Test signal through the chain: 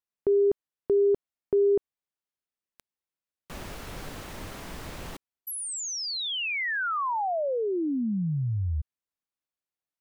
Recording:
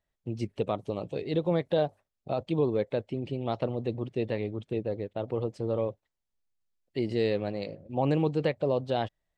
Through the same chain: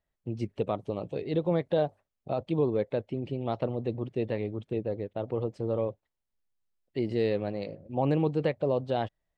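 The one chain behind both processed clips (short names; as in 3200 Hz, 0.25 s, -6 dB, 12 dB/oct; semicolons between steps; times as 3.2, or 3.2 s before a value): high shelf 3500 Hz -7.5 dB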